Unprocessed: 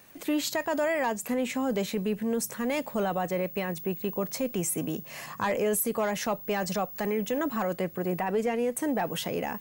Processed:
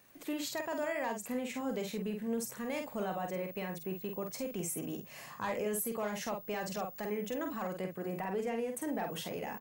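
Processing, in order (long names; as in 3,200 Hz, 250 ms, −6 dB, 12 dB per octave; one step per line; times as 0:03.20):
double-tracking delay 48 ms −5 dB
level −9 dB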